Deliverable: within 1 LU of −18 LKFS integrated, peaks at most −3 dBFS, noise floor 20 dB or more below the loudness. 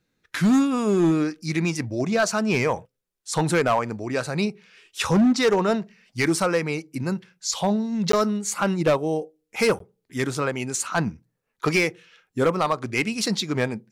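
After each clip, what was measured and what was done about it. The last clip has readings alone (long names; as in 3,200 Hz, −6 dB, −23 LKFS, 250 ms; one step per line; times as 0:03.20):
share of clipped samples 1.5%; peaks flattened at −14.0 dBFS; number of dropouts 2; longest dropout 13 ms; integrated loudness −23.5 LKFS; sample peak −14.0 dBFS; target loudness −18.0 LKFS
→ clipped peaks rebuilt −14 dBFS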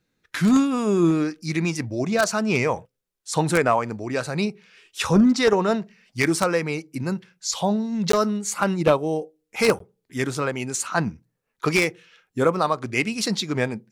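share of clipped samples 0.0%; number of dropouts 2; longest dropout 13 ms
→ repair the gap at 0:08.12/0:09.79, 13 ms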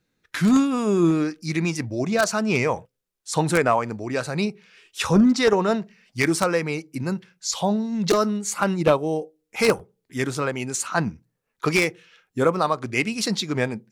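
number of dropouts 0; integrated loudness −23.0 LKFS; sample peak −5.0 dBFS; target loudness −18.0 LKFS
→ level +5 dB
brickwall limiter −3 dBFS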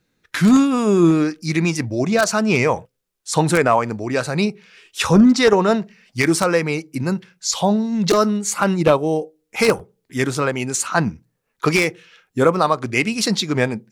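integrated loudness −18.5 LKFS; sample peak −3.0 dBFS; background noise floor −73 dBFS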